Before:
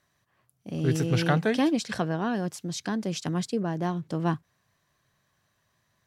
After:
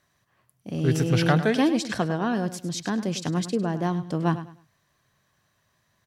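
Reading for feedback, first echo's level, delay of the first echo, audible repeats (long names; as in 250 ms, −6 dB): 27%, −13.0 dB, 102 ms, 2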